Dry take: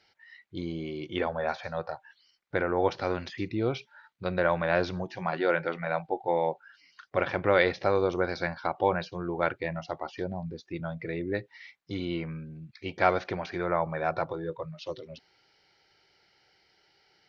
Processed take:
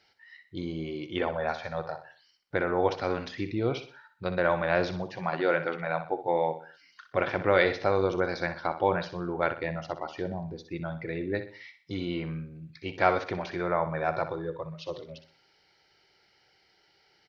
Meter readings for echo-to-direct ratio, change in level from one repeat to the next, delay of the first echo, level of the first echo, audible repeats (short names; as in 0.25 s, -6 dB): -10.5 dB, -8.0 dB, 62 ms, -11.0 dB, 3